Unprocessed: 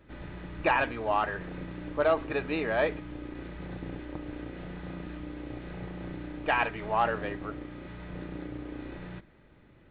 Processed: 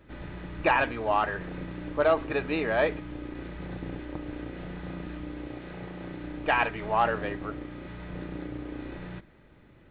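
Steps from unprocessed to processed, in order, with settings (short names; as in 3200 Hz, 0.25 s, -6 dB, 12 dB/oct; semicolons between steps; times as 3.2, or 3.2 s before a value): 5.47–6.23 low shelf 120 Hz -8.5 dB; gain +2 dB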